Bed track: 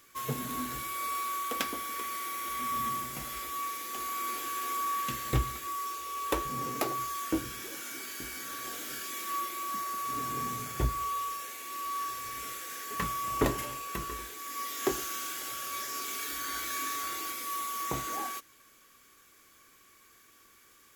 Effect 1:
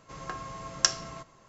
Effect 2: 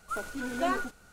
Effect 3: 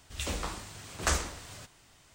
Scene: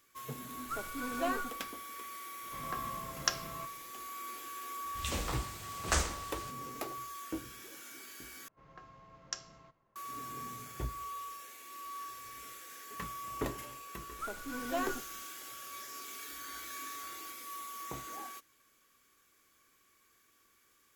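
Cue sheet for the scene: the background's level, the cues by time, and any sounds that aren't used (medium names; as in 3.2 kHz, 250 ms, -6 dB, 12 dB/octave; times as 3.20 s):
bed track -9 dB
0.60 s: add 2 -5 dB
2.43 s: add 1 -4 dB + low-pass 4.7 kHz
4.85 s: add 3 -2 dB
8.48 s: replace with 1 -16 dB + level-controlled noise filter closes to 1.7 kHz, open at -26.5 dBFS
14.11 s: add 2 -6 dB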